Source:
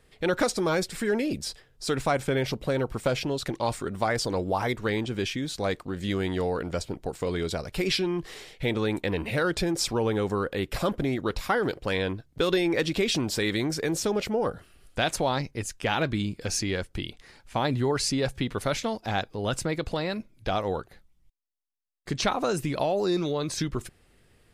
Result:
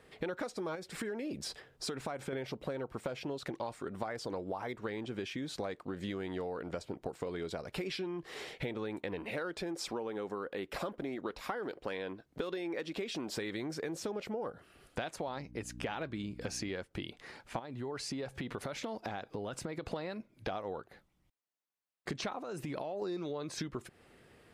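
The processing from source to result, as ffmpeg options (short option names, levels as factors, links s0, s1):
-filter_complex "[0:a]asettb=1/sr,asplit=3[s0][s1][s2];[s0]atrim=end=0.754[s3];[s1]atrim=start=0.75:end=2.33,asetpts=PTS-STARTPTS,afade=t=in:d=0.004:c=qsin,afade=t=out:st=1.576:d=0.004:c=qsin,acompressor=threshold=0.0316:ratio=3:attack=3.2:release=140:knee=1:detection=peak[s4];[s2]atrim=start=2.326[s5];[s3][s4]acrossfade=d=0.004:c1=hsin:c2=qsin[s6];[s6][s5]acrossfade=d=0.004:c1=qsin:c2=hsin,asettb=1/sr,asplit=3[s7][s8][s9];[s7]atrim=end=9.194[s10];[s8]atrim=start=9.19:end=13.37,asetpts=PTS-STARTPTS,afade=t=in:d=0.004:c=qsin,afade=t=out:st=4.176:d=0.004:c=qsin,equalizer=f=110:w=1.5:g=-10[s11];[s9]atrim=start=13.366[s12];[s10][s11]acrossfade=d=0.004:c1=hsin:c2=qsin[s13];[s13][s12]acrossfade=d=0.004:c1=qsin:c2=hsin,asettb=1/sr,asplit=3[s14][s15][s16];[s14]atrim=end=15.264[s17];[s15]atrim=start=15.26:end=16.7,asetpts=PTS-STARTPTS,afade=t=in:d=0.004:c=qsin,afade=t=out:st=1.436:d=0.004:c=qsin,aeval=exprs='val(0)+0.01*(sin(2*PI*60*n/s)+sin(2*PI*2*60*n/s)/2+sin(2*PI*3*60*n/s)/3+sin(2*PI*4*60*n/s)/4+sin(2*PI*5*60*n/s)/5)':c=same[s18];[s16]atrim=start=16.696[s19];[s17][s18]acrossfade=d=0.004:c1=hsin:c2=qsin[s20];[s20][s19]acrossfade=d=0.004:c1=qsin:c2=hsin,asettb=1/sr,asplit=3[s21][s22][s23];[s21]atrim=end=17.594[s24];[s22]atrim=start=17.59:end=19.86,asetpts=PTS-STARTPTS,afade=t=in:d=0.004:c=qsin,afade=t=out:st=2.266:d=0.004:c=qsin,acompressor=threshold=0.0251:ratio=6:attack=3.2:release=140:knee=1:detection=peak[s25];[s23]atrim=start=19.856[s26];[s24][s25]acrossfade=d=0.004:c1=hsin:c2=qsin[s27];[s27][s26]acrossfade=d=0.004:c1=qsin:c2=hsin,asettb=1/sr,asplit=3[s28][s29][s30];[s28]atrim=end=22.414[s31];[s29]atrim=start=22.41:end=23.02,asetpts=PTS-STARTPTS,afade=t=in:d=0.004:c=qsin,afade=t=out:st=0.606:d=0.004:c=qsin,acompressor=threshold=0.0282:ratio=5:attack=3.2:release=140:knee=1:detection=peak[s32];[s30]atrim=start=23.016[s33];[s31][s32]acrossfade=d=0.004:c1=hsin:c2=qsin[s34];[s34][s33]acrossfade=d=0.004:c1=qsin:c2=hsin,highpass=f=260:p=1,highshelf=f=2900:g=-10.5,acompressor=threshold=0.00794:ratio=8,volume=2"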